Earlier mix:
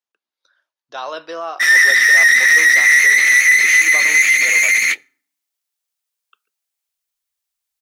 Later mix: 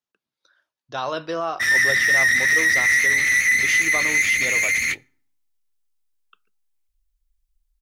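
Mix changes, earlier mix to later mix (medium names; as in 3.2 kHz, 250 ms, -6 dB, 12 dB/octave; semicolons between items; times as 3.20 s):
background -7.0 dB; master: remove high-pass 430 Hz 12 dB/octave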